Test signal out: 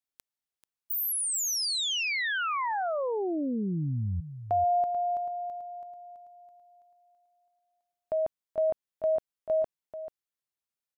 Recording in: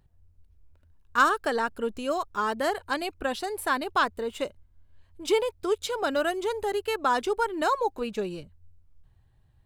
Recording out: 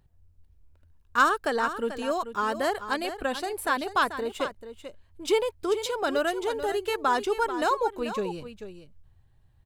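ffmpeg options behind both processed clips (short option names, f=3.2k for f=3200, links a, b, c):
-af "aecho=1:1:438:0.282"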